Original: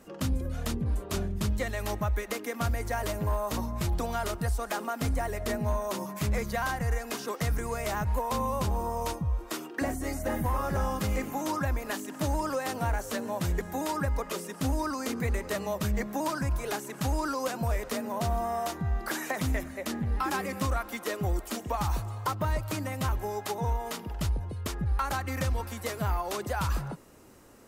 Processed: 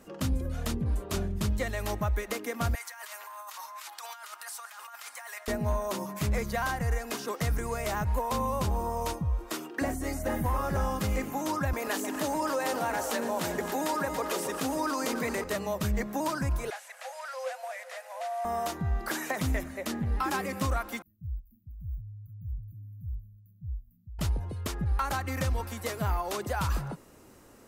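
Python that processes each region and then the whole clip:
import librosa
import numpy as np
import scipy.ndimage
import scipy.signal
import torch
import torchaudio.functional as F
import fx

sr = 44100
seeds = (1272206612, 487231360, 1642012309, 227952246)

y = fx.chain(x, sr, fx.highpass(hz=1000.0, slope=24),
    fx.over_compress(threshold_db=-43.0, ratio=-1.0), at=(2.75, 5.48))
y = fx.chain(y, sr, fx.highpass(hz=270.0, slope=12),
    fx.echo_alternate(ms=141, hz=850.0, feedback_pct=74, wet_db=-8.0),
    fx.env_flatten(amount_pct=50), at=(11.73, 15.44))
y = fx.chain(y, sr, fx.delta_mod(bps=64000, step_db=-48.0),
    fx.cheby_ripple_highpass(hz=500.0, ripple_db=9),
    fx.high_shelf(hz=7000.0, db=8.5), at=(16.7, 18.45))
y = fx.chain(y, sr, fx.cheby2_bandstop(low_hz=420.0, high_hz=8100.0, order=4, stop_db=60),
    fx.bass_treble(bass_db=-6, treble_db=-9), at=(21.02, 24.19))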